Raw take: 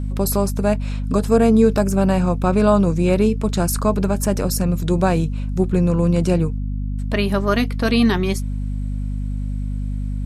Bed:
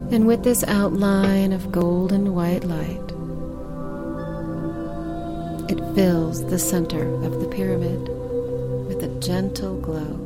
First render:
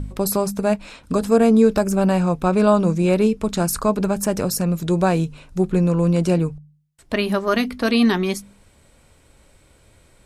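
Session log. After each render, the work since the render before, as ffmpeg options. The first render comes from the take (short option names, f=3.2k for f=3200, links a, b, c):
-af "bandreject=f=50:t=h:w=4,bandreject=f=100:t=h:w=4,bandreject=f=150:t=h:w=4,bandreject=f=200:t=h:w=4,bandreject=f=250:t=h:w=4"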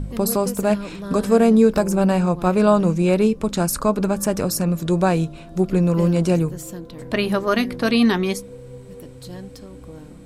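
-filter_complex "[1:a]volume=-13dB[a];[0:a][a]amix=inputs=2:normalize=0"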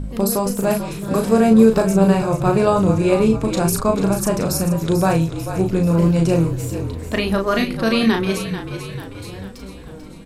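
-filter_complex "[0:a]asplit=2[a][b];[b]adelay=36,volume=-4.5dB[c];[a][c]amix=inputs=2:normalize=0,asplit=7[d][e][f][g][h][i][j];[e]adelay=441,afreqshift=-44,volume=-10dB[k];[f]adelay=882,afreqshift=-88,volume=-15.2dB[l];[g]adelay=1323,afreqshift=-132,volume=-20.4dB[m];[h]adelay=1764,afreqshift=-176,volume=-25.6dB[n];[i]adelay=2205,afreqshift=-220,volume=-30.8dB[o];[j]adelay=2646,afreqshift=-264,volume=-36dB[p];[d][k][l][m][n][o][p]amix=inputs=7:normalize=0"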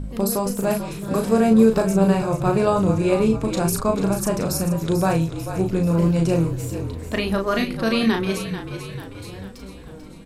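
-af "volume=-3dB"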